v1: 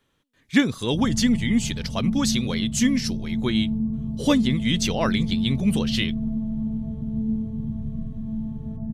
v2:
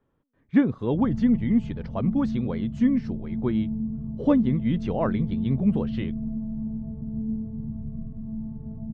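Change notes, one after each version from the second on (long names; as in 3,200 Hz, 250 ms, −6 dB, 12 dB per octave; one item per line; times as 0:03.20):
background −4.0 dB
master: add low-pass filter 1,000 Hz 12 dB per octave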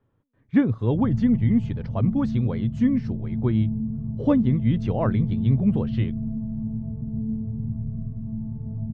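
master: add parametric band 110 Hz +13 dB 0.43 octaves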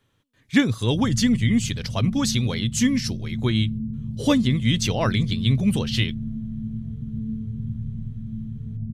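background: add Gaussian smoothing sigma 21 samples
master: remove low-pass filter 1,000 Hz 12 dB per octave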